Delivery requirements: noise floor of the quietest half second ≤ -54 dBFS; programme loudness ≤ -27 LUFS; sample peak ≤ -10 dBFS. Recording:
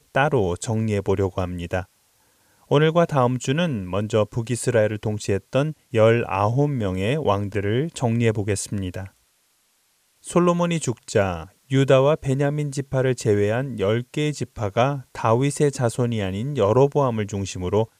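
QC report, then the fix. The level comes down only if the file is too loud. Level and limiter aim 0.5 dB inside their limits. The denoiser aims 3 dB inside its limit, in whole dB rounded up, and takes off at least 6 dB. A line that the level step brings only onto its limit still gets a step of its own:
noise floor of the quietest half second -65 dBFS: OK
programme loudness -22.0 LUFS: fail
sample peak -4.5 dBFS: fail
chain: gain -5.5 dB; limiter -10.5 dBFS

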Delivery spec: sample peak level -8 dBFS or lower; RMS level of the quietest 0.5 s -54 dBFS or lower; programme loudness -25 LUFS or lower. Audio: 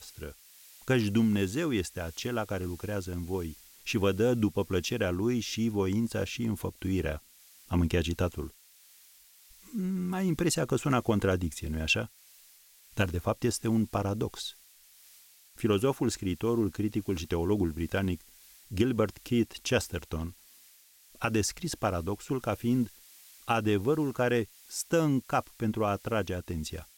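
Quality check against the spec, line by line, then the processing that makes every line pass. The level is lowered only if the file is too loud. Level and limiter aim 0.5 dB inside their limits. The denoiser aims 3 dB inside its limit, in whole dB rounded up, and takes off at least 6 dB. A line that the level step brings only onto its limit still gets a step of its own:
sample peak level -13.5 dBFS: OK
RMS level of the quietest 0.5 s -59 dBFS: OK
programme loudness -30.5 LUFS: OK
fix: none

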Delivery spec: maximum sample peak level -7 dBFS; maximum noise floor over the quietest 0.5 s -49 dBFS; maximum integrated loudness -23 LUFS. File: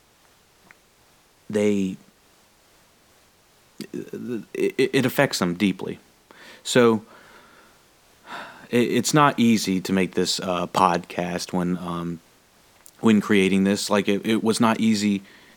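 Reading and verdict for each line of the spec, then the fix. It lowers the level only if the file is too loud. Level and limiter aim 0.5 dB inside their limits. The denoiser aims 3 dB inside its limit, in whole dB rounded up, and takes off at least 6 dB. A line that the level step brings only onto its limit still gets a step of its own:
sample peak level -2.5 dBFS: fail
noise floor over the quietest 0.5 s -58 dBFS: OK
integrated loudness -22.0 LUFS: fail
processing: gain -1.5 dB; limiter -7.5 dBFS

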